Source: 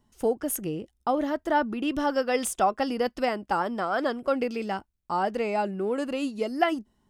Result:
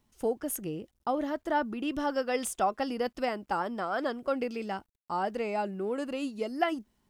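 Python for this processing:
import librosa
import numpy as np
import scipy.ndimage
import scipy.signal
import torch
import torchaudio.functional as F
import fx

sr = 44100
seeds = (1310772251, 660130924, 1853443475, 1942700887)

y = fx.quant_dither(x, sr, seeds[0], bits=12, dither='none')
y = y * 10.0 ** (-4.5 / 20.0)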